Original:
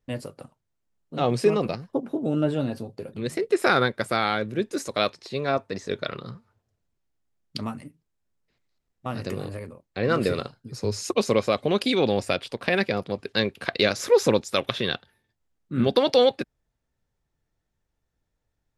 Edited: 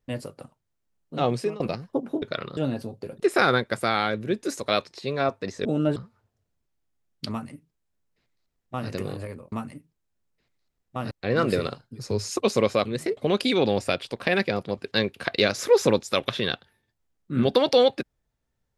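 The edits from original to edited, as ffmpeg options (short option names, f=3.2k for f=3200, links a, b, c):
-filter_complex "[0:a]asplit=11[a][b][c][d][e][f][g][h][i][j][k];[a]atrim=end=1.6,asetpts=PTS-STARTPTS,afade=t=out:st=1.25:d=0.35:silence=0.0944061[l];[b]atrim=start=1.6:end=2.222,asetpts=PTS-STARTPTS,afade=t=in:d=0.004:c=hsin:silence=0.0944061[m];[c]atrim=start=5.928:end=6.282[n];[d]atrim=start=2.528:end=3.162[o];[e]atrim=start=3.478:end=5.932[p];[f]atrim=start=2.218:end=2.532[q];[g]atrim=start=6.278:end=9.842[r];[h]atrim=start=7.618:end=9.212[s];[i]atrim=start=9.838:end=11.582[t];[j]atrim=start=3.158:end=3.482[u];[k]atrim=start=11.578[v];[l][m]concat=n=2:v=0:a=1[w];[w][n]acrossfade=d=0.004:c1=hsin:c2=hsin[x];[x][o]acrossfade=d=0.004:c1=hsin:c2=hsin[y];[y][p]acrossfade=d=0.004:c1=hsin:c2=hsin[z];[z][q]acrossfade=d=0.004:c1=hsin:c2=hsin[aa];[aa][r]acrossfade=d=0.004:c1=hsin:c2=hsin[ab];[ab][s]acrossfade=d=0.004:c1=hsin:c2=hsin[ac];[ac][t]acrossfade=d=0.004:c1=hsin:c2=hsin[ad];[ad][u]acrossfade=d=0.004:c1=hsin:c2=hsin[ae];[ae][v]acrossfade=d=0.004:c1=hsin:c2=hsin"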